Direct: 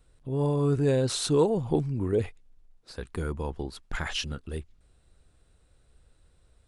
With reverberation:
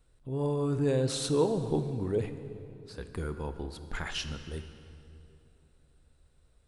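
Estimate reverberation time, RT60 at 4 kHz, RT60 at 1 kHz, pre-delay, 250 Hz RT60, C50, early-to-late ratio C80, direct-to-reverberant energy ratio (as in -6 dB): 2.8 s, 2.1 s, 2.6 s, 18 ms, 3.4 s, 10.0 dB, 11.0 dB, 9.5 dB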